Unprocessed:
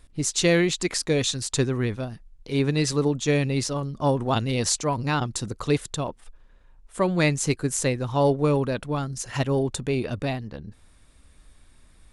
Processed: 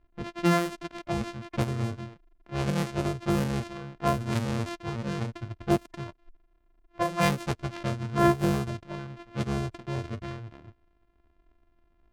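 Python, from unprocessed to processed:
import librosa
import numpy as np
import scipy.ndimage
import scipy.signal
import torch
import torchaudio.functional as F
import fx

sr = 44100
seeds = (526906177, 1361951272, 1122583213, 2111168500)

y = np.r_[np.sort(x[:len(x) // 128 * 128].reshape(-1, 128), axis=1).ravel(), x[len(x) // 128 * 128:]]
y = fx.noise_reduce_blind(y, sr, reduce_db=12)
y = fx.env_lowpass(y, sr, base_hz=2300.0, full_db=-21.5)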